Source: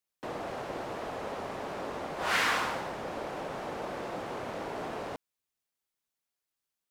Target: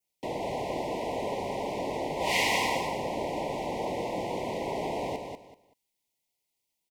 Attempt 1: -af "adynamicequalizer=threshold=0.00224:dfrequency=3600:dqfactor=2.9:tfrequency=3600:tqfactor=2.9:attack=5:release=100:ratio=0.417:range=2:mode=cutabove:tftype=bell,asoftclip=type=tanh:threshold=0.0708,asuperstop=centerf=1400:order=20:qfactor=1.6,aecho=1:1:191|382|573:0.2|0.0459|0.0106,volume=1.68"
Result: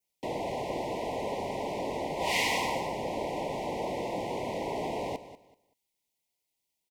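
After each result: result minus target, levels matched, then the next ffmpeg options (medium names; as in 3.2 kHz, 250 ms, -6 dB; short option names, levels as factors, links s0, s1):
saturation: distortion +10 dB; echo-to-direct -8.5 dB
-af "adynamicequalizer=threshold=0.00224:dfrequency=3600:dqfactor=2.9:tfrequency=3600:tqfactor=2.9:attack=5:release=100:ratio=0.417:range=2:mode=cutabove:tftype=bell,asoftclip=type=tanh:threshold=0.15,asuperstop=centerf=1400:order=20:qfactor=1.6,aecho=1:1:191|382|573:0.2|0.0459|0.0106,volume=1.68"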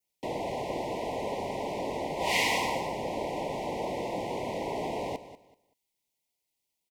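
echo-to-direct -8.5 dB
-af "adynamicequalizer=threshold=0.00224:dfrequency=3600:dqfactor=2.9:tfrequency=3600:tqfactor=2.9:attack=5:release=100:ratio=0.417:range=2:mode=cutabove:tftype=bell,asoftclip=type=tanh:threshold=0.15,asuperstop=centerf=1400:order=20:qfactor=1.6,aecho=1:1:191|382|573:0.531|0.122|0.0281,volume=1.68"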